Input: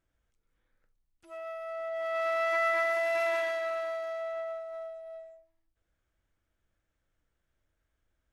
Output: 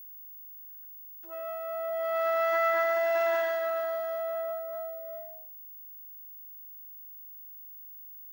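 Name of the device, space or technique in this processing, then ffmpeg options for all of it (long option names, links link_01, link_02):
old television with a line whistle: -af "highpass=frequency=200:width=0.5412,highpass=frequency=200:width=1.3066,equalizer=frequency=380:width_type=q:width=4:gain=4,equalizer=frequency=800:width_type=q:width=4:gain=9,equalizer=frequency=1600:width_type=q:width=4:gain=8,equalizer=frequency=2300:width_type=q:width=4:gain=-10,equalizer=frequency=4100:width_type=q:width=4:gain=-3,lowpass=frequency=7500:width=0.5412,lowpass=frequency=7500:width=1.3066,aeval=exprs='val(0)+0.00631*sin(2*PI*15625*n/s)':channel_layout=same"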